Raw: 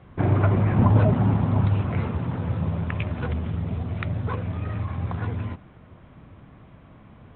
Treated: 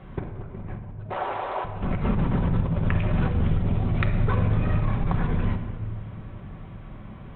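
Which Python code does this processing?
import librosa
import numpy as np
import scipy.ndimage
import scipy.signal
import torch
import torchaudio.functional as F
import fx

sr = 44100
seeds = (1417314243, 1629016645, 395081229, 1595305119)

y = fx.octave_divider(x, sr, octaves=2, level_db=-3.0)
y = fx.cheby2_highpass(y, sr, hz=190.0, order=4, stop_db=50, at=(1.09, 1.64), fade=0.02)
y = fx.over_compress(y, sr, threshold_db=-26.0, ratio=-0.5)
y = fx.room_shoebox(y, sr, seeds[0], volume_m3=2000.0, walls='mixed', distance_m=1.1)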